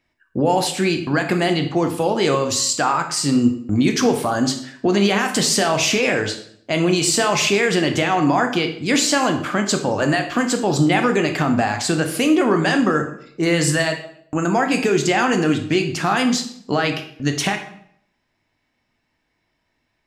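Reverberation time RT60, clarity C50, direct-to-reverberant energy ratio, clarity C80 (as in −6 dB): 0.65 s, 9.0 dB, 5.0 dB, 12.5 dB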